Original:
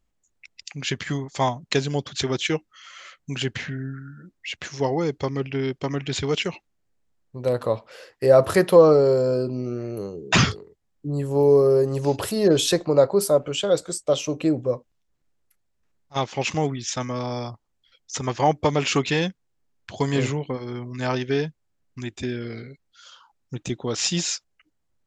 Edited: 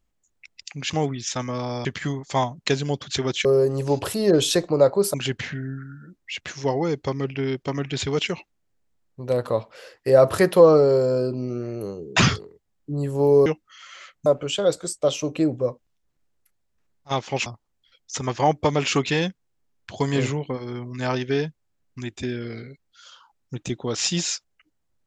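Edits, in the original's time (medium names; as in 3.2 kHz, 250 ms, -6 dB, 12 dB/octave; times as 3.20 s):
2.50–3.30 s: swap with 11.62–13.31 s
16.51–17.46 s: move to 0.90 s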